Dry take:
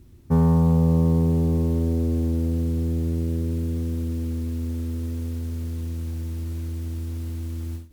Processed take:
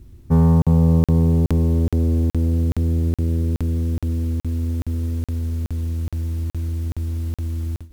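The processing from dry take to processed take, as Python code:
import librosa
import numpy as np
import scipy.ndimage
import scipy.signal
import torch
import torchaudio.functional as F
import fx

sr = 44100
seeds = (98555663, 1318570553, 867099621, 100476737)

y = fx.low_shelf(x, sr, hz=72.0, db=10.0)
y = fx.buffer_crackle(y, sr, first_s=0.62, period_s=0.42, block=2048, kind='zero')
y = F.gain(torch.from_numpy(y), 1.5).numpy()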